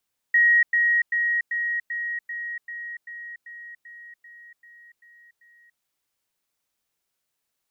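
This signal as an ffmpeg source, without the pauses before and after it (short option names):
-f lavfi -i "aevalsrc='pow(10,(-14-3*floor(t/0.39))/20)*sin(2*PI*1890*t)*clip(min(mod(t,0.39),0.29-mod(t,0.39))/0.005,0,1)':d=5.46:s=44100"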